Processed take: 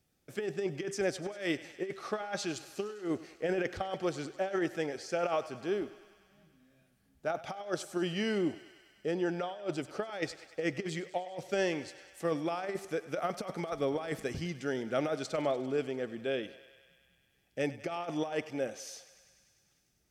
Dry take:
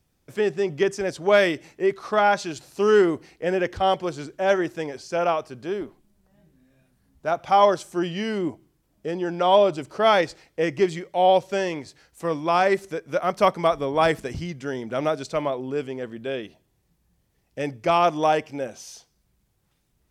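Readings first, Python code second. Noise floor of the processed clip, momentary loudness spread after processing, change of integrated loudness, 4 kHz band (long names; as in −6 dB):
−72 dBFS, 6 LU, −12.0 dB, −10.5 dB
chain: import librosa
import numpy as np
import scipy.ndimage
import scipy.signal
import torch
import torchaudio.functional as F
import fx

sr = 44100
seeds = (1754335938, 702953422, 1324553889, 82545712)

p1 = fx.low_shelf(x, sr, hz=87.0, db=-10.0)
p2 = fx.notch(p1, sr, hz=1000.0, q=5.2)
p3 = fx.over_compress(p2, sr, threshold_db=-24.0, ratio=-0.5)
p4 = p3 + fx.echo_thinned(p3, sr, ms=99, feedback_pct=78, hz=450.0, wet_db=-16.0, dry=0)
y = p4 * 10.0 ** (-7.5 / 20.0)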